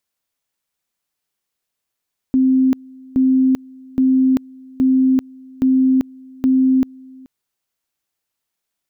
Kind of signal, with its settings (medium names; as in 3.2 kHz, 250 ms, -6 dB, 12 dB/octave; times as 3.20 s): two-level tone 261 Hz -10.5 dBFS, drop 26 dB, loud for 0.39 s, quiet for 0.43 s, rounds 6